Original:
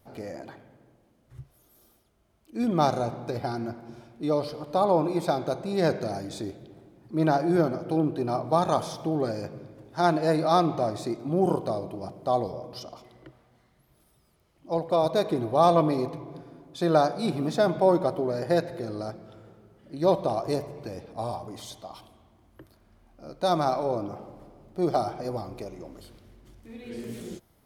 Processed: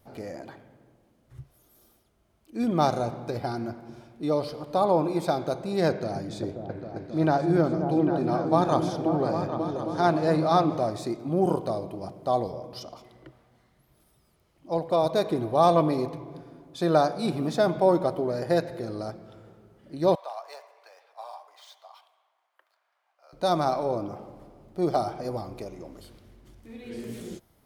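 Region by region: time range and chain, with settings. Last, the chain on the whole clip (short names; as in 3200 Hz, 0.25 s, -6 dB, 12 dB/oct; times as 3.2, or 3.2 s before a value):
5.89–10.77 high shelf 8200 Hz -10.5 dB + repeats that get brighter 0.267 s, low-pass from 200 Hz, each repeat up 2 oct, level -3 dB
20.15–23.33 median filter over 5 samples + Bessel high-pass 1100 Hz, order 6 + high shelf 2700 Hz -8 dB
whole clip: dry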